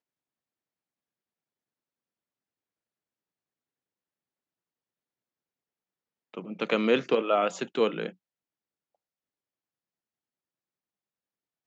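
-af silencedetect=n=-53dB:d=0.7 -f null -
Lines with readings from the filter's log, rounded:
silence_start: 0.00
silence_end: 6.34 | silence_duration: 6.34
silence_start: 8.14
silence_end: 11.67 | silence_duration: 3.53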